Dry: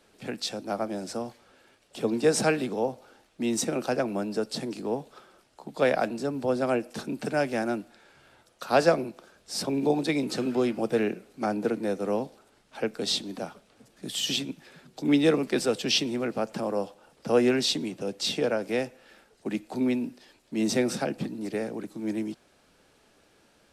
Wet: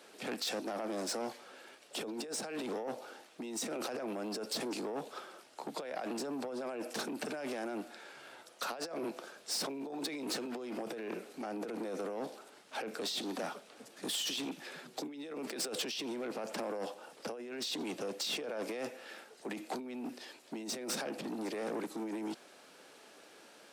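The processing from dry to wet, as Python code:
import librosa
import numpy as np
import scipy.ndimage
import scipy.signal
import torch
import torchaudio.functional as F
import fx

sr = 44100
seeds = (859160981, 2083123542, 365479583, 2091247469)

y = fx.over_compress(x, sr, threshold_db=-34.0, ratio=-1.0)
y = 10.0 ** (-31.0 / 20.0) * np.tanh(y / 10.0 ** (-31.0 / 20.0))
y = scipy.signal.sosfilt(scipy.signal.butter(2, 310.0, 'highpass', fs=sr, output='sos'), y)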